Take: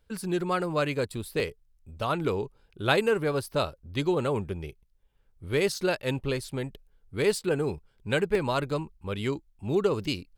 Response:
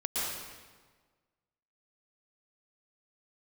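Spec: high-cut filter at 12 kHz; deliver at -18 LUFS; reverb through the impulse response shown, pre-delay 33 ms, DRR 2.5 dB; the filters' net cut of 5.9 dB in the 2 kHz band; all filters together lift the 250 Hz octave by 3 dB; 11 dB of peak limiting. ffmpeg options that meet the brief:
-filter_complex "[0:a]lowpass=12000,equalizer=f=250:t=o:g=4.5,equalizer=f=2000:t=o:g=-8.5,alimiter=limit=0.0794:level=0:latency=1,asplit=2[s0][s1];[1:a]atrim=start_sample=2205,adelay=33[s2];[s1][s2]afir=irnorm=-1:irlink=0,volume=0.335[s3];[s0][s3]amix=inputs=2:normalize=0,volume=4.47"

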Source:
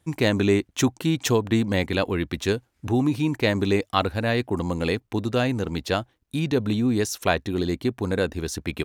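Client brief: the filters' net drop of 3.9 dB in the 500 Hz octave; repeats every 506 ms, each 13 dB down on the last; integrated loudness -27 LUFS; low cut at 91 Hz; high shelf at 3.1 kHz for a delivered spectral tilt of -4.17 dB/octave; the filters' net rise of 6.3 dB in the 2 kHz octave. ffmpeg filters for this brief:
-af "highpass=91,equalizer=f=500:t=o:g=-5.5,equalizer=f=2000:t=o:g=6.5,highshelf=f=3100:g=4.5,aecho=1:1:506|1012|1518:0.224|0.0493|0.0108,volume=0.708"

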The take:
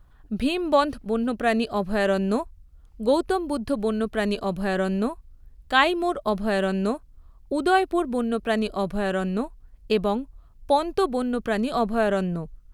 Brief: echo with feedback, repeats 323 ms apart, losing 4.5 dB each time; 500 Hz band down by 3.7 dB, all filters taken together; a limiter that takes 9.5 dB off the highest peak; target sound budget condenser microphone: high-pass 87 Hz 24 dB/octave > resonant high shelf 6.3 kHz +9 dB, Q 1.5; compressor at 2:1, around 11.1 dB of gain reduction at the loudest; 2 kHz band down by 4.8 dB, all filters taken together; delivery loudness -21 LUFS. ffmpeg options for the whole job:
-af "equalizer=f=500:t=o:g=-4.5,equalizer=f=2000:t=o:g=-5.5,acompressor=threshold=0.0126:ratio=2,alimiter=level_in=1.88:limit=0.0631:level=0:latency=1,volume=0.531,highpass=f=87:w=0.5412,highpass=f=87:w=1.3066,highshelf=f=6300:t=q:w=1.5:g=9,aecho=1:1:323|646|969|1292|1615|1938|2261|2584|2907:0.596|0.357|0.214|0.129|0.0772|0.0463|0.0278|0.0167|0.01,volume=6.31"

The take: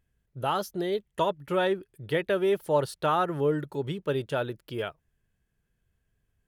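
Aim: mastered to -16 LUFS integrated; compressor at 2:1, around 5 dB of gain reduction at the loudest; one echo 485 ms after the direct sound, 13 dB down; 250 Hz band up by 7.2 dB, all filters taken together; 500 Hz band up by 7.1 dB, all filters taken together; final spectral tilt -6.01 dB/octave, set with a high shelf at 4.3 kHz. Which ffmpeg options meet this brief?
-af "equalizer=f=250:t=o:g=8,equalizer=f=500:t=o:g=6.5,highshelf=f=4300:g=-3.5,acompressor=threshold=0.0708:ratio=2,aecho=1:1:485:0.224,volume=3.35"

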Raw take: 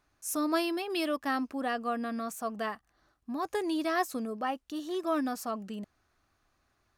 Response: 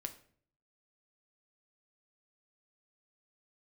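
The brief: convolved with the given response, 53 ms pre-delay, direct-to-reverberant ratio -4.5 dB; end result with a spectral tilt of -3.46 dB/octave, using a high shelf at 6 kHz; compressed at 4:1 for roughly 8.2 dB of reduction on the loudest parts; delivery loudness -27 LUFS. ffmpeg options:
-filter_complex "[0:a]highshelf=f=6000:g=5.5,acompressor=threshold=0.02:ratio=4,asplit=2[s0][s1];[1:a]atrim=start_sample=2205,adelay=53[s2];[s1][s2]afir=irnorm=-1:irlink=0,volume=2.24[s3];[s0][s3]amix=inputs=2:normalize=0,volume=1.68"

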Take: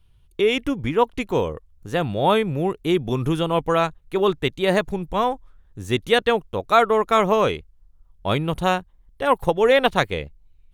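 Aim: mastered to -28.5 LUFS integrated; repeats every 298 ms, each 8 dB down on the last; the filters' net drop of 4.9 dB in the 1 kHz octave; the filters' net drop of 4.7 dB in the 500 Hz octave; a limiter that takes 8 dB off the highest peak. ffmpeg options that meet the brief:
-af "equalizer=f=500:t=o:g=-4.5,equalizer=f=1000:t=o:g=-5,alimiter=limit=0.224:level=0:latency=1,aecho=1:1:298|596|894|1192|1490:0.398|0.159|0.0637|0.0255|0.0102,volume=0.75"

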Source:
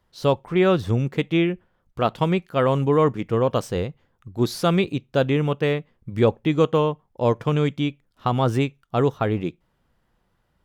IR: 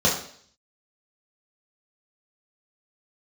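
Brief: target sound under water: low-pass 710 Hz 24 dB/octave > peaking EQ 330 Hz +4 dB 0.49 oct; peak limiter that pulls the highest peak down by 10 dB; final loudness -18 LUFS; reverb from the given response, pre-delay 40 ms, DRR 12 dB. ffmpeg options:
-filter_complex "[0:a]alimiter=limit=0.168:level=0:latency=1,asplit=2[s0][s1];[1:a]atrim=start_sample=2205,adelay=40[s2];[s1][s2]afir=irnorm=-1:irlink=0,volume=0.0376[s3];[s0][s3]amix=inputs=2:normalize=0,lowpass=f=710:w=0.5412,lowpass=f=710:w=1.3066,equalizer=f=330:t=o:w=0.49:g=4,volume=2.51"

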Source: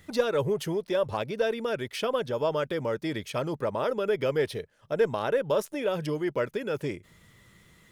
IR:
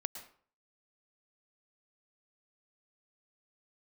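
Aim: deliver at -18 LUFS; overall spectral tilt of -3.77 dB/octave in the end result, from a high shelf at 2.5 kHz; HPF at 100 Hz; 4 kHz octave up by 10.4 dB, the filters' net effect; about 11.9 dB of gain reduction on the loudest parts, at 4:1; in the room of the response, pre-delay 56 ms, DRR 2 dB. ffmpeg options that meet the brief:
-filter_complex "[0:a]highpass=100,highshelf=f=2500:g=8,equalizer=f=4000:t=o:g=6.5,acompressor=threshold=0.0224:ratio=4,asplit=2[s0][s1];[1:a]atrim=start_sample=2205,adelay=56[s2];[s1][s2]afir=irnorm=-1:irlink=0,volume=0.841[s3];[s0][s3]amix=inputs=2:normalize=0,volume=5.96"

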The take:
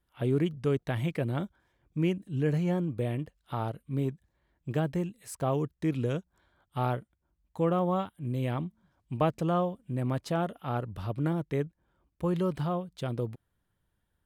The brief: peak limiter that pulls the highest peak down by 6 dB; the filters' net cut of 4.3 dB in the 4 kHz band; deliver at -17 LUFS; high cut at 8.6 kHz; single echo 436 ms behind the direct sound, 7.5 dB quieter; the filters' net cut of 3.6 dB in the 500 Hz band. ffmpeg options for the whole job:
-af "lowpass=8600,equalizer=f=500:t=o:g=-4.5,equalizer=f=4000:t=o:g=-6,alimiter=limit=0.0668:level=0:latency=1,aecho=1:1:436:0.422,volume=7.08"

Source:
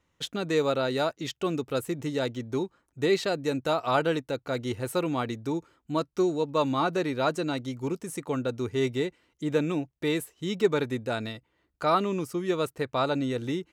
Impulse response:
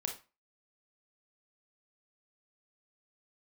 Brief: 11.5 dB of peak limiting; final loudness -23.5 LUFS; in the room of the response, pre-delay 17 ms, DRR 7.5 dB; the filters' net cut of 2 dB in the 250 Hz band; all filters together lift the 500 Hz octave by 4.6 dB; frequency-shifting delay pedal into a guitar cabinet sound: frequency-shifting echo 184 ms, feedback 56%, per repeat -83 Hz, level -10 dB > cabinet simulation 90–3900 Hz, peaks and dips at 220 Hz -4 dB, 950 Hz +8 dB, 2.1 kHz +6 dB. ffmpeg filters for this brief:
-filter_complex "[0:a]equalizer=f=250:t=o:g=-5.5,equalizer=f=500:t=o:g=7,alimiter=limit=0.112:level=0:latency=1,asplit=2[s0][s1];[1:a]atrim=start_sample=2205,adelay=17[s2];[s1][s2]afir=irnorm=-1:irlink=0,volume=0.376[s3];[s0][s3]amix=inputs=2:normalize=0,asplit=7[s4][s5][s6][s7][s8][s9][s10];[s5]adelay=184,afreqshift=-83,volume=0.316[s11];[s6]adelay=368,afreqshift=-166,volume=0.178[s12];[s7]adelay=552,afreqshift=-249,volume=0.0989[s13];[s8]adelay=736,afreqshift=-332,volume=0.0556[s14];[s9]adelay=920,afreqshift=-415,volume=0.0313[s15];[s10]adelay=1104,afreqshift=-498,volume=0.0174[s16];[s4][s11][s12][s13][s14][s15][s16]amix=inputs=7:normalize=0,highpass=90,equalizer=f=220:t=q:w=4:g=-4,equalizer=f=950:t=q:w=4:g=8,equalizer=f=2100:t=q:w=4:g=6,lowpass=f=3900:w=0.5412,lowpass=f=3900:w=1.3066,volume=1.78"

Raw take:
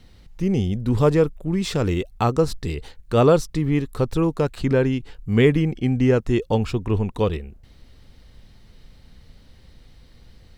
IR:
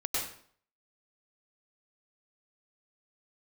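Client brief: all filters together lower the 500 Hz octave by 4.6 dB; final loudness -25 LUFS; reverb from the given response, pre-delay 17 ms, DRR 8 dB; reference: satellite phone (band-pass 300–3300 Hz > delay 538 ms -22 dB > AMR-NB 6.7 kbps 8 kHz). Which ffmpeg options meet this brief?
-filter_complex "[0:a]equalizer=f=500:t=o:g=-4.5,asplit=2[s0][s1];[1:a]atrim=start_sample=2205,adelay=17[s2];[s1][s2]afir=irnorm=-1:irlink=0,volume=0.2[s3];[s0][s3]amix=inputs=2:normalize=0,highpass=300,lowpass=3300,aecho=1:1:538:0.0794,volume=1.33" -ar 8000 -c:a libopencore_amrnb -b:a 6700

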